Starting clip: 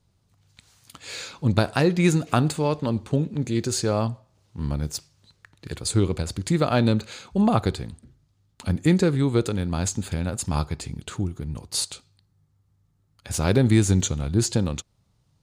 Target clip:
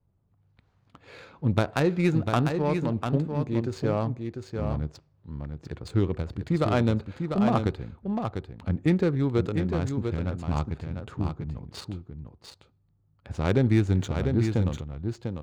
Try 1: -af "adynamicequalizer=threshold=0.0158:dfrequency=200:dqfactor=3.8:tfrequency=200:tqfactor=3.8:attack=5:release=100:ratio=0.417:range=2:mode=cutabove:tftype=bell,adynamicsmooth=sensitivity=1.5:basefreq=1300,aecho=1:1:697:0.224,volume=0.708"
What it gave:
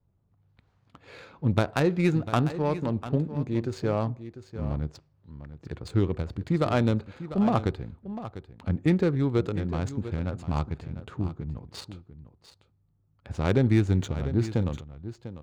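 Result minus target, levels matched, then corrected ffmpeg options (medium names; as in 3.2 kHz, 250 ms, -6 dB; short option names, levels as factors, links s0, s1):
echo-to-direct -7 dB
-af "adynamicequalizer=threshold=0.0158:dfrequency=200:dqfactor=3.8:tfrequency=200:tqfactor=3.8:attack=5:release=100:ratio=0.417:range=2:mode=cutabove:tftype=bell,adynamicsmooth=sensitivity=1.5:basefreq=1300,aecho=1:1:697:0.501,volume=0.708"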